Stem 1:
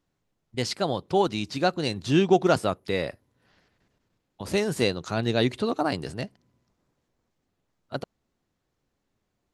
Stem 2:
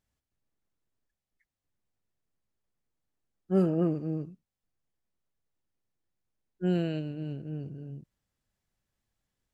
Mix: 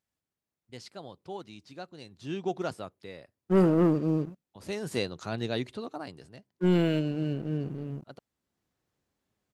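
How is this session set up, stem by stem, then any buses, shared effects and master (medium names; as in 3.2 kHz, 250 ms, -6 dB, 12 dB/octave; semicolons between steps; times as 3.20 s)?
2.15 s -18.5 dB -> 2.55 s -8 dB, 0.15 s, no send, high-pass 53 Hz; gain riding within 4 dB 2 s; auto duck -15 dB, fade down 1.20 s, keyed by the second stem
+1.0 dB, 0.00 s, no send, high-pass 180 Hz 6 dB/octave; waveshaping leveller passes 2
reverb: none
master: none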